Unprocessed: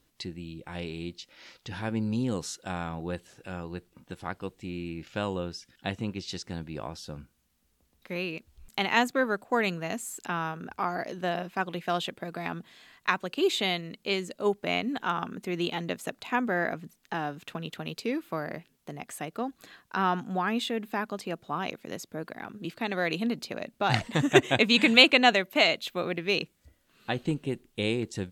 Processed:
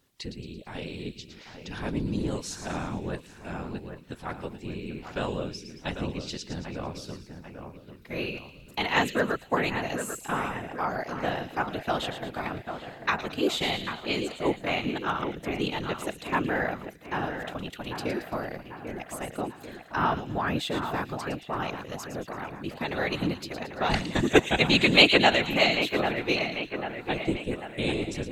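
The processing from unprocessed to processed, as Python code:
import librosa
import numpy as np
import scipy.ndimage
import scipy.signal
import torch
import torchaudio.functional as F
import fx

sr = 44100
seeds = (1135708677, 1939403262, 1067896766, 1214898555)

y = fx.whisperise(x, sr, seeds[0])
y = fx.echo_split(y, sr, split_hz=2600.0, low_ms=793, high_ms=112, feedback_pct=52, wet_db=-8.5)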